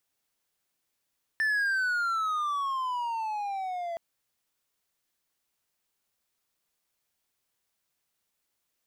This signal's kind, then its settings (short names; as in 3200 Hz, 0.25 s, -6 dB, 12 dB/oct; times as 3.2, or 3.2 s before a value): gliding synth tone triangle, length 2.57 s, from 1780 Hz, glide -17 st, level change -8 dB, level -21.5 dB